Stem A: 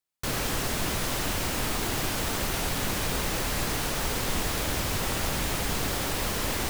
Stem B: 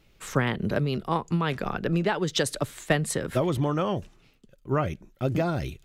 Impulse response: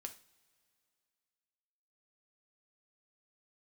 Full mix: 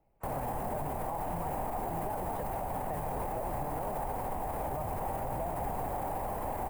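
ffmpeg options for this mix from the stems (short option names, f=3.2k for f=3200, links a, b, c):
-filter_complex "[0:a]alimiter=level_in=0.5dB:limit=-24dB:level=0:latency=1,volume=-0.5dB,aexciter=amount=6.8:drive=3.4:freq=8.2k,volume=2dB[a];[1:a]volume=-12dB[b];[a][b]amix=inputs=2:normalize=0,acrossover=split=140|3000[c][d][e];[d]acompressor=threshold=-33dB:ratio=6[f];[c][f][e]amix=inputs=3:normalize=0,firequalizer=gain_entry='entry(380,0);entry(780,15);entry(1300,-6);entry(2000,-8);entry(3500,-23)':delay=0.05:min_phase=1,alimiter=level_in=2.5dB:limit=-24dB:level=0:latency=1,volume=-2.5dB"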